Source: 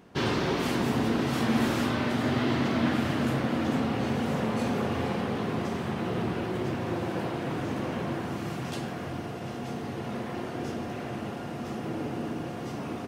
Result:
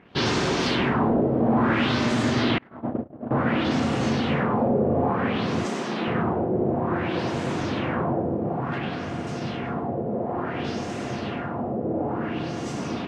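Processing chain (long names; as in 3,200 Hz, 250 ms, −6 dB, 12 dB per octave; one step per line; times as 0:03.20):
leveller curve on the samples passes 1
echo with a time of its own for lows and highs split 400 Hz, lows 624 ms, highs 98 ms, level −8 dB
auto-filter low-pass sine 0.57 Hz 540–7,500 Hz
0:02.58–0:03.31: noise gate −18 dBFS, range −33 dB
0:05.65–0:06.08: high-pass filter 190 Hz 24 dB per octave
0:08.78–0:09.27: bass and treble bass −1 dB, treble −9 dB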